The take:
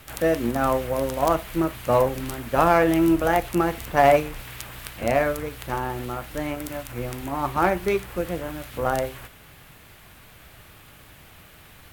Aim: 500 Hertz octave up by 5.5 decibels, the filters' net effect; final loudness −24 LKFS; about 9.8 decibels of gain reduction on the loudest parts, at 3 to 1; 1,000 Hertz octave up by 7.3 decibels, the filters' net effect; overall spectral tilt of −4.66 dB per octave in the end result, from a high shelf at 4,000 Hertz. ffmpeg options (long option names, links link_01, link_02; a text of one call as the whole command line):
ffmpeg -i in.wav -af "equalizer=frequency=500:width_type=o:gain=4,equalizer=frequency=1000:width_type=o:gain=8,highshelf=frequency=4000:gain=7,acompressor=threshold=-19dB:ratio=3" out.wav